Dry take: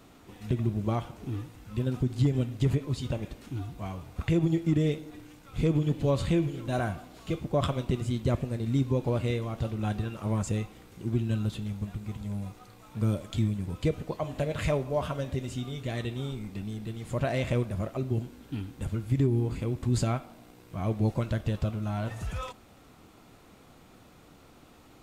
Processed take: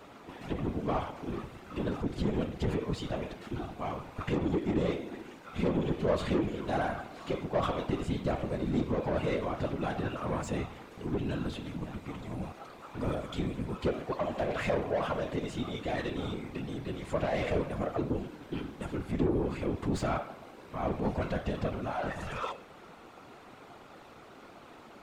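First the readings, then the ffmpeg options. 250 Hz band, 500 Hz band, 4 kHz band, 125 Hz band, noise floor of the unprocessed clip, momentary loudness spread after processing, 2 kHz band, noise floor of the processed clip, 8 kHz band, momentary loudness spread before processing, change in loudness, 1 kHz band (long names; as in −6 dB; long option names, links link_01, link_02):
−2.5 dB, +0.5 dB, −1.5 dB, −8.5 dB, −55 dBFS, 16 LU, +1.5 dB, −52 dBFS, −6.0 dB, 11 LU, −3.0 dB, +3.0 dB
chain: -filter_complex "[0:a]bandreject=frequency=103.9:width_type=h:width=4,bandreject=frequency=207.8:width_type=h:width=4,bandreject=frequency=311.7:width_type=h:width=4,bandreject=frequency=415.6:width_type=h:width=4,bandreject=frequency=519.5:width_type=h:width=4,bandreject=frequency=623.4:width_type=h:width=4,bandreject=frequency=727.3:width_type=h:width=4,bandreject=frequency=831.2:width_type=h:width=4,bandreject=frequency=935.1:width_type=h:width=4,bandreject=frequency=1039:width_type=h:width=4,bandreject=frequency=1142.9:width_type=h:width=4,bandreject=frequency=1246.8:width_type=h:width=4,bandreject=frequency=1350.7:width_type=h:width=4,bandreject=frequency=1454.6:width_type=h:width=4,bandreject=frequency=1558.5:width_type=h:width=4,bandreject=frequency=1662.4:width_type=h:width=4,bandreject=frequency=1766.3:width_type=h:width=4,bandreject=frequency=1870.2:width_type=h:width=4,bandreject=frequency=1974.1:width_type=h:width=4,bandreject=frequency=2078:width_type=h:width=4,bandreject=frequency=2181.9:width_type=h:width=4,bandreject=frequency=2285.8:width_type=h:width=4,bandreject=frequency=2389.7:width_type=h:width=4,bandreject=frequency=2493.6:width_type=h:width=4,bandreject=frequency=2597.5:width_type=h:width=4,bandreject=frequency=2701.4:width_type=h:width=4,bandreject=frequency=2805.3:width_type=h:width=4,bandreject=frequency=2909.2:width_type=h:width=4,bandreject=frequency=3013.1:width_type=h:width=4,bandreject=frequency=3117:width_type=h:width=4,bandreject=frequency=3220.9:width_type=h:width=4,bandreject=frequency=3324.8:width_type=h:width=4,bandreject=frequency=3428.7:width_type=h:width=4,bandreject=frequency=3532.6:width_type=h:width=4,bandreject=frequency=3636.5:width_type=h:width=4,bandreject=frequency=3740.4:width_type=h:width=4,bandreject=frequency=3844.3:width_type=h:width=4,bandreject=frequency=3948.2:width_type=h:width=4,asplit=2[link_01][link_02];[link_02]highpass=frequency=720:poles=1,volume=23dB,asoftclip=type=tanh:threshold=-15dB[link_03];[link_01][link_03]amix=inputs=2:normalize=0,lowpass=frequency=1300:poles=1,volume=-6dB,afftfilt=real='hypot(re,im)*cos(2*PI*random(0))':imag='hypot(re,im)*sin(2*PI*random(1))':win_size=512:overlap=0.75"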